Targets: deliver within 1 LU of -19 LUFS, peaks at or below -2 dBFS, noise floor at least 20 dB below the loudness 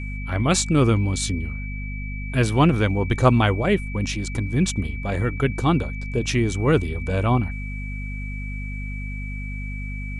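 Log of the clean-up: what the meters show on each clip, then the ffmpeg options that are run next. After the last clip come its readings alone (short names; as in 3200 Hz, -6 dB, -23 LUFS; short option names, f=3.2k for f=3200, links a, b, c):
hum 50 Hz; harmonics up to 250 Hz; hum level -28 dBFS; steady tone 2300 Hz; tone level -36 dBFS; loudness -23.0 LUFS; peak -4.0 dBFS; loudness target -19.0 LUFS
-> -af "bandreject=f=50:t=h:w=4,bandreject=f=100:t=h:w=4,bandreject=f=150:t=h:w=4,bandreject=f=200:t=h:w=4,bandreject=f=250:t=h:w=4"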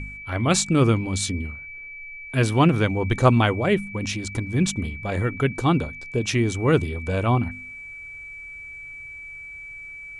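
hum none; steady tone 2300 Hz; tone level -36 dBFS
-> -af "bandreject=f=2.3k:w=30"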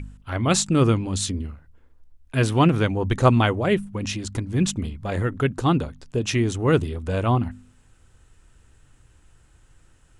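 steady tone none; loudness -22.5 LUFS; peak -4.0 dBFS; loudness target -19.0 LUFS
-> -af "volume=3.5dB,alimiter=limit=-2dB:level=0:latency=1"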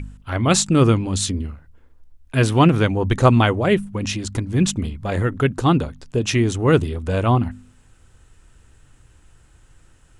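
loudness -19.5 LUFS; peak -2.0 dBFS; noise floor -54 dBFS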